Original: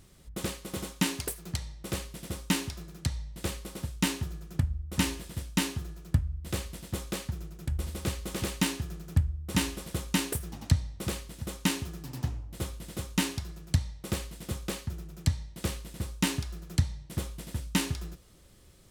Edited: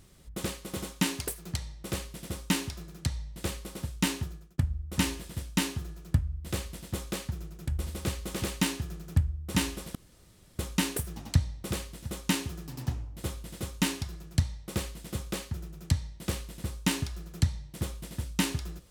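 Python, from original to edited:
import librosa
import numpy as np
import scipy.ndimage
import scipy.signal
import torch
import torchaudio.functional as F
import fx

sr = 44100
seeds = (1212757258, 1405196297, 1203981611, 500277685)

y = fx.edit(x, sr, fx.fade_out_span(start_s=4.21, length_s=0.37),
    fx.insert_room_tone(at_s=9.95, length_s=0.64), tone=tone)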